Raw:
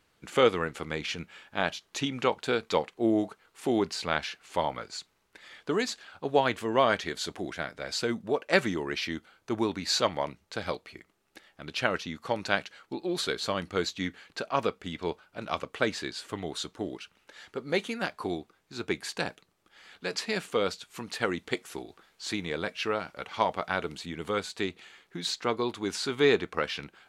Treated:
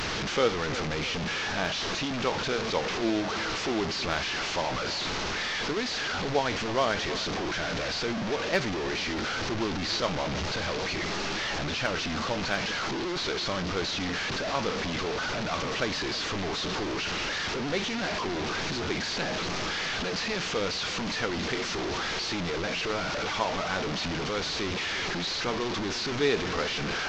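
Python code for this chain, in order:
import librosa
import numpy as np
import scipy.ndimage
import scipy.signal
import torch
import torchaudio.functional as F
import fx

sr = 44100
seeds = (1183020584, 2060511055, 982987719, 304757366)

y = fx.delta_mod(x, sr, bps=32000, step_db=-22.0)
y = np.clip(y, -10.0 ** (-9.5 / 20.0), 10.0 ** (-9.5 / 20.0))
y = fx.echo_split(y, sr, split_hz=2000.0, low_ms=320, high_ms=632, feedback_pct=52, wet_db=-14.5)
y = y * librosa.db_to_amplitude(-3.0)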